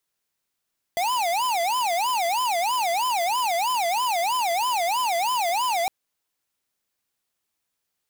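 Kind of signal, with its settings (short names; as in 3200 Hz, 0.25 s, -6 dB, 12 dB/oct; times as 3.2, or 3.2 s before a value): siren wail 673–1020 Hz 3.1/s square -23.5 dBFS 4.91 s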